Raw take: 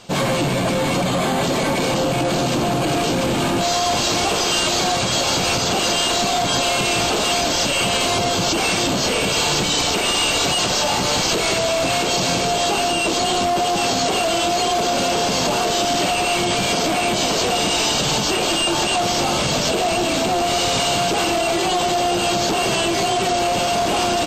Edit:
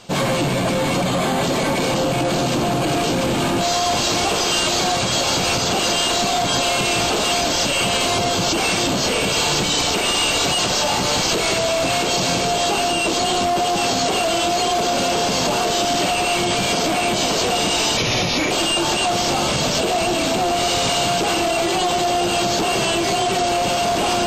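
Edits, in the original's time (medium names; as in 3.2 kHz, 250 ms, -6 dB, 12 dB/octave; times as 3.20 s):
17.97–18.41 s: speed 82%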